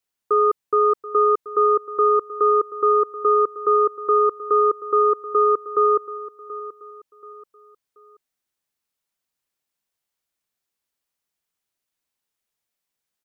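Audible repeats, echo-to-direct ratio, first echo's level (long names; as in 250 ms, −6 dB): 3, −15.5 dB, −16.0 dB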